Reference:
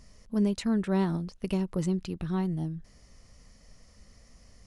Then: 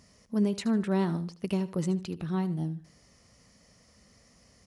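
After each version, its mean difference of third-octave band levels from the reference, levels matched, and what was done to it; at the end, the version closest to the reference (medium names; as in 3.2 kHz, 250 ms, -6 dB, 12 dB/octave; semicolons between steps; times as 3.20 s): 1.0 dB: high-pass 100 Hz 12 dB/octave; feedback delay 76 ms, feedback 28%, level -16 dB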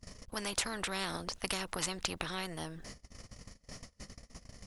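13.0 dB: gate -51 dBFS, range -32 dB; spectrum-flattening compressor 4:1; trim +2.5 dB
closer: first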